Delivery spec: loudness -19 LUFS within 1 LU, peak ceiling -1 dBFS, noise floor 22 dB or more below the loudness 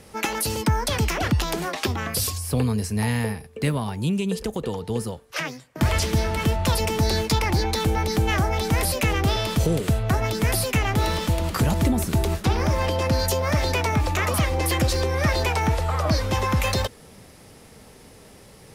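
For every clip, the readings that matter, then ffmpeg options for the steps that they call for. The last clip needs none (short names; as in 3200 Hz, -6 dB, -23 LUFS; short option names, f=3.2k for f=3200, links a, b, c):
loudness -23.5 LUFS; peak -11.0 dBFS; loudness target -19.0 LUFS
-> -af "volume=4.5dB"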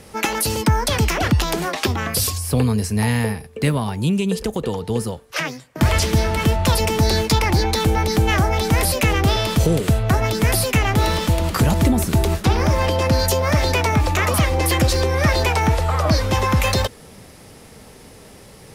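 loudness -19.0 LUFS; peak -6.5 dBFS; noise floor -44 dBFS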